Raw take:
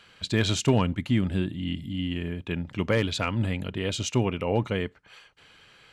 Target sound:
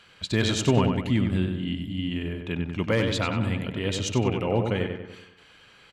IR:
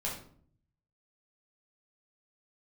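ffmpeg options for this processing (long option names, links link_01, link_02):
-filter_complex "[0:a]asplit=2[link_01][link_02];[link_02]adelay=95,lowpass=frequency=3100:poles=1,volume=-5dB,asplit=2[link_03][link_04];[link_04]adelay=95,lowpass=frequency=3100:poles=1,volume=0.51,asplit=2[link_05][link_06];[link_06]adelay=95,lowpass=frequency=3100:poles=1,volume=0.51,asplit=2[link_07][link_08];[link_08]adelay=95,lowpass=frequency=3100:poles=1,volume=0.51,asplit=2[link_09][link_10];[link_10]adelay=95,lowpass=frequency=3100:poles=1,volume=0.51,asplit=2[link_11][link_12];[link_12]adelay=95,lowpass=frequency=3100:poles=1,volume=0.51[link_13];[link_01][link_03][link_05][link_07][link_09][link_11][link_13]amix=inputs=7:normalize=0"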